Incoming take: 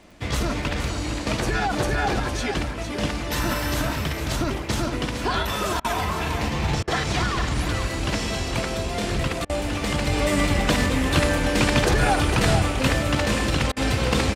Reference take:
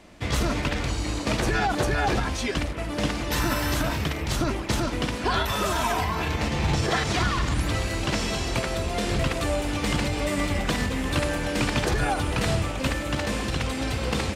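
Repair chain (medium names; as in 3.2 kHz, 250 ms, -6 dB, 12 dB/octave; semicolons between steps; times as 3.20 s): de-click; interpolate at 5.80/6.83/9.45/13.72 s, 44 ms; inverse comb 458 ms -8 dB; gain correction -4.5 dB, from 10.07 s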